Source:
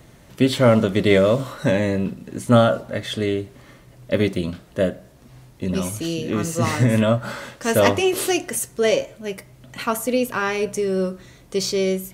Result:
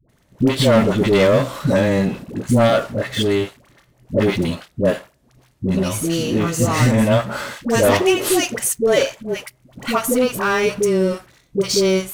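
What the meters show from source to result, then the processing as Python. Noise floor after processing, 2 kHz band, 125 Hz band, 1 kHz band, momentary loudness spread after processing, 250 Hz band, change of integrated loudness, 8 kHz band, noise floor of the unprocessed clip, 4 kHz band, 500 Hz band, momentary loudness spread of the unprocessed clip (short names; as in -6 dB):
-59 dBFS, +3.0 dB, +2.5 dB, +3.0 dB, 12 LU, +3.0 dB, +3.0 dB, +4.5 dB, -49 dBFS, +4.0 dB, +3.0 dB, 12 LU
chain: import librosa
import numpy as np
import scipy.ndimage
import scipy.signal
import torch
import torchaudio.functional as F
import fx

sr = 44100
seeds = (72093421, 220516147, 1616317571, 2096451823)

y = fx.leveller(x, sr, passes=3)
y = fx.dispersion(y, sr, late='highs', ms=92.0, hz=580.0)
y = y * librosa.db_to_amplitude(-6.0)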